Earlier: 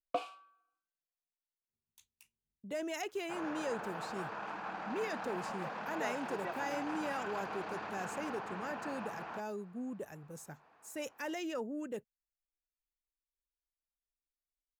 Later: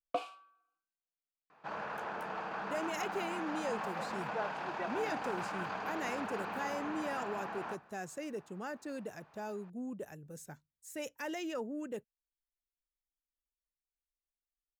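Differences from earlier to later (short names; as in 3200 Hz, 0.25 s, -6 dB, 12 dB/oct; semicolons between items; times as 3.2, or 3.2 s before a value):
second sound: entry -1.65 s; reverb: on, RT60 0.65 s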